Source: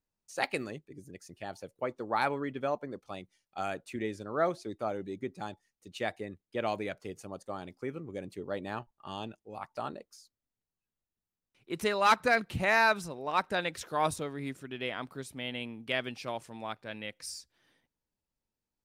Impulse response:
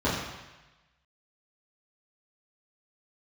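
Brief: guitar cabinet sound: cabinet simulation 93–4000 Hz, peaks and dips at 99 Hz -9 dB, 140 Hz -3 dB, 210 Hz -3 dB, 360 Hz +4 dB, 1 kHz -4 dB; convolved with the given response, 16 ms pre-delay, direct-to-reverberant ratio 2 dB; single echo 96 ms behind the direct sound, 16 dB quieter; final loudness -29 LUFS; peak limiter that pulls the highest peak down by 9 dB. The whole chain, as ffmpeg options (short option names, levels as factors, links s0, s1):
-filter_complex "[0:a]alimiter=limit=0.075:level=0:latency=1,aecho=1:1:96:0.158,asplit=2[s0][s1];[1:a]atrim=start_sample=2205,adelay=16[s2];[s1][s2]afir=irnorm=-1:irlink=0,volume=0.158[s3];[s0][s3]amix=inputs=2:normalize=0,highpass=93,equalizer=f=99:t=q:w=4:g=-9,equalizer=f=140:t=q:w=4:g=-3,equalizer=f=210:t=q:w=4:g=-3,equalizer=f=360:t=q:w=4:g=4,equalizer=f=1000:t=q:w=4:g=-4,lowpass=f=4000:w=0.5412,lowpass=f=4000:w=1.3066,volume=1.78"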